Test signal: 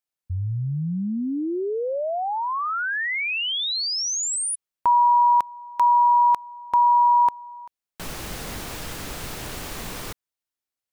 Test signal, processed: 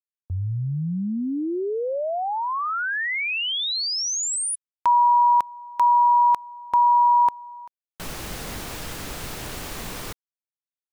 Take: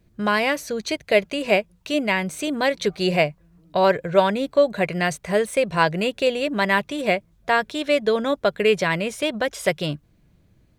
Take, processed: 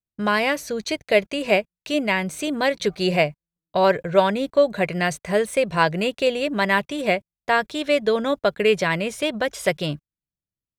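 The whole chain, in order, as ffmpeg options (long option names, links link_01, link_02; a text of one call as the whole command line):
ffmpeg -i in.wav -af "agate=range=-38dB:threshold=-49dB:ratio=16:release=48:detection=peak" out.wav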